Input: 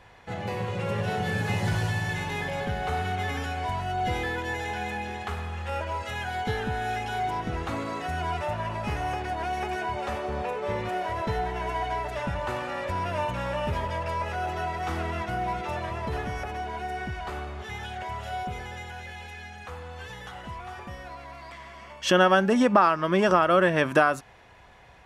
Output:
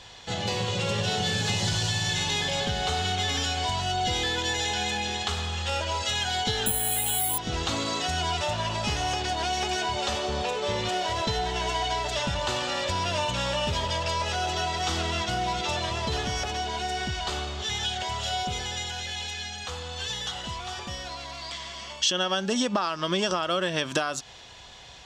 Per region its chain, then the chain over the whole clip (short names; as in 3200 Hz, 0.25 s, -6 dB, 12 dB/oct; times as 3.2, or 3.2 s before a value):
6.66–7.38 steep low-pass 4300 Hz 48 dB/oct + doubler 18 ms -2.5 dB + careless resampling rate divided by 4×, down none, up zero stuff
whole clip: band shelf 4900 Hz +16 dB; compressor 6:1, threshold -25 dBFS; gain +2 dB